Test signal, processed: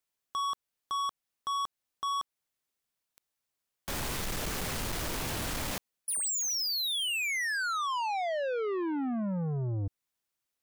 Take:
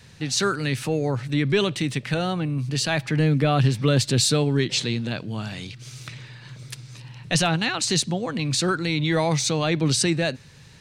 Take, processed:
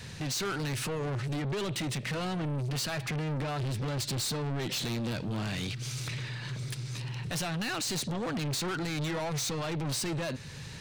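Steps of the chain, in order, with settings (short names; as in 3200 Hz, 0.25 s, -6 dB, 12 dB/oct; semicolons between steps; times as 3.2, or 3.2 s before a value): in parallel at -0.5 dB: compressor, threshold -31 dBFS; on the sum: limiter -14.5 dBFS; soft clip -30.5 dBFS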